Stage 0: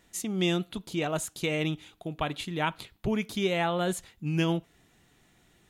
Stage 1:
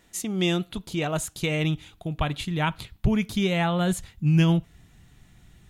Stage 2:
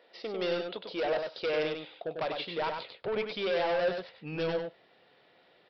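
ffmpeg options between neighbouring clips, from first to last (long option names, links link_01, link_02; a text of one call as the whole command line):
ffmpeg -i in.wav -af "asubboost=boost=5.5:cutoff=160,volume=3dB" out.wav
ffmpeg -i in.wav -af "highpass=frequency=510:width_type=q:width=4.9,aresample=11025,asoftclip=type=tanh:threshold=-25dB,aresample=44100,aecho=1:1:98:0.562,volume=-2.5dB" out.wav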